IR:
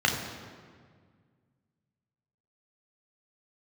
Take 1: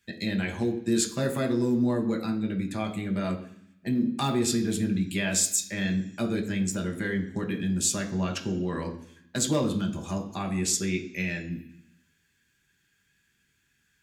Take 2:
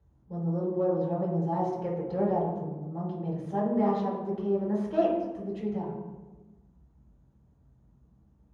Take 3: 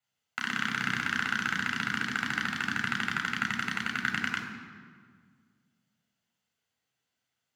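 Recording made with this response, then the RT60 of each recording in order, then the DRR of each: 3; 0.65, 1.2, 1.8 s; 2.0, -10.0, 0.0 dB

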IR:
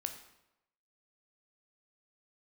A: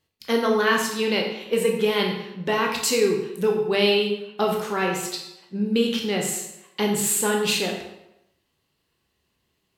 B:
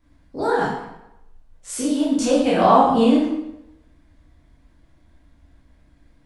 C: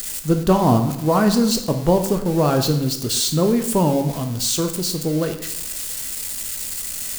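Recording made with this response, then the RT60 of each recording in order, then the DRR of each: C; 0.90, 0.90, 0.90 s; 0.0, -8.5, 6.0 dB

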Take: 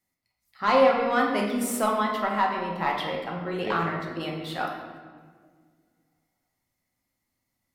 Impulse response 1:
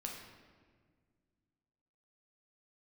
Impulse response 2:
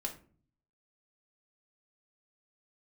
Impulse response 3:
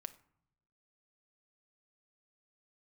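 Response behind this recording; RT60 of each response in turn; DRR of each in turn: 1; 1.7, 0.45, 0.70 s; -0.5, 0.5, 9.5 dB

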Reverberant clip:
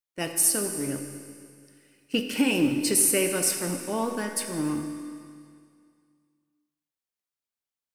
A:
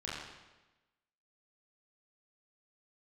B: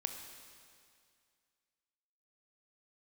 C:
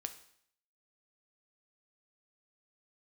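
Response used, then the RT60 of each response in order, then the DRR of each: B; 1.1, 2.2, 0.65 s; -7.5, 5.0, 7.5 dB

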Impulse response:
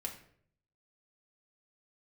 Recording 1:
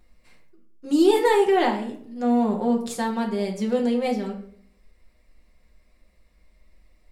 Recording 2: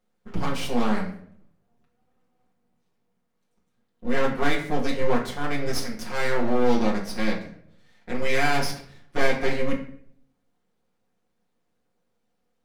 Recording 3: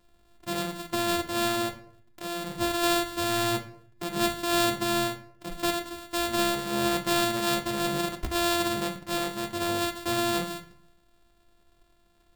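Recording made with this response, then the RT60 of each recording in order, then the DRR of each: 1; 0.60, 0.60, 0.60 s; -1.0, -5.0, 4.0 dB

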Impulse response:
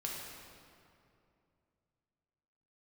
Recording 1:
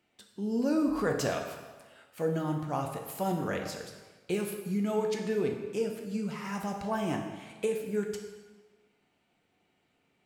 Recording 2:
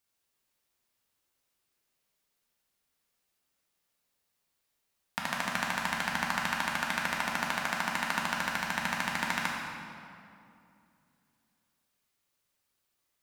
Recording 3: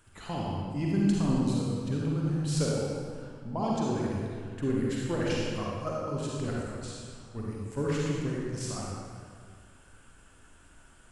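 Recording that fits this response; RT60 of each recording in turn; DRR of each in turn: 2; 1.4, 2.6, 2.0 s; 2.0, -3.5, -5.0 dB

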